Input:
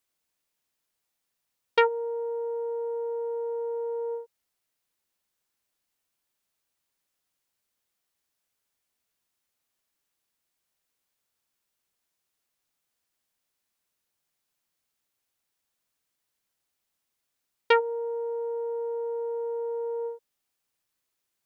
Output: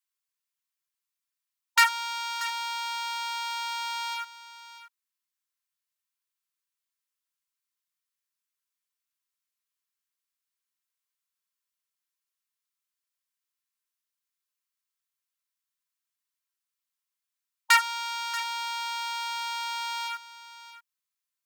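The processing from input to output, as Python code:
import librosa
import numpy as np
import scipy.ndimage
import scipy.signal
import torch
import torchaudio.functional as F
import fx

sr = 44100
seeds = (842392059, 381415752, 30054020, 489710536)

y = fx.high_shelf(x, sr, hz=3400.0, db=2.5)
y = y + 0.39 * np.pad(y, (int(3.8 * sr / 1000.0), 0))[:len(y)]
y = fx.leveller(y, sr, passes=5)
y = fx.brickwall_highpass(y, sr, low_hz=920.0)
y = y + 10.0 ** (-14.5 / 20.0) * np.pad(y, (int(634 * sr / 1000.0), 0))[:len(y)]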